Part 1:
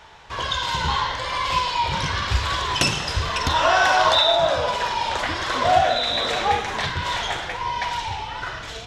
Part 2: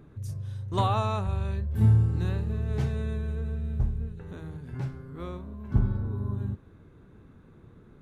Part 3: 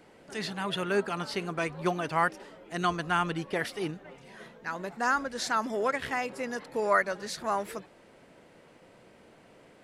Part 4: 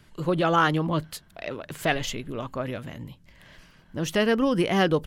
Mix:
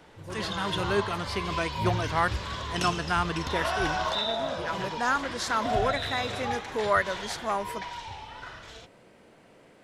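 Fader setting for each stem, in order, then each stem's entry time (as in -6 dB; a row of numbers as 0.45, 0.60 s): -12.0, -11.5, +0.5, -18.0 dB; 0.00, 0.00, 0.00, 0.00 s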